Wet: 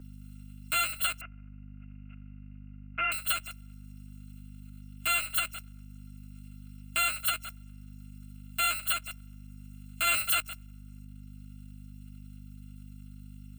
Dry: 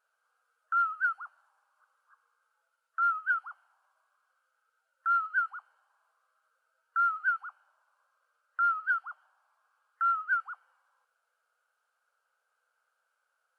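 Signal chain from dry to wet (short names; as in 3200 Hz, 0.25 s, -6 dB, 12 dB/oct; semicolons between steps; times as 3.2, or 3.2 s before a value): FFT order left unsorted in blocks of 256 samples; 1.21–3.12 steep low-pass 2700 Hz 72 dB/oct; 10.07–10.47 sample leveller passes 2; hum 50 Hz, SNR 13 dB; three-band squash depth 40%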